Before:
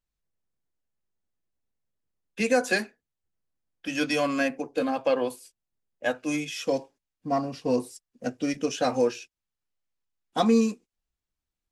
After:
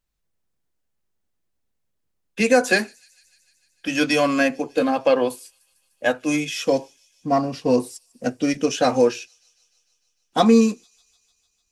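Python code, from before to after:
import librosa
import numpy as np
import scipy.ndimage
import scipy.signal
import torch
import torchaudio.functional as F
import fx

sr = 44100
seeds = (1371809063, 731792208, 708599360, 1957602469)

y = fx.echo_wet_highpass(x, sr, ms=150, feedback_pct=73, hz=5000.0, wet_db=-21)
y = y * 10.0 ** (6.5 / 20.0)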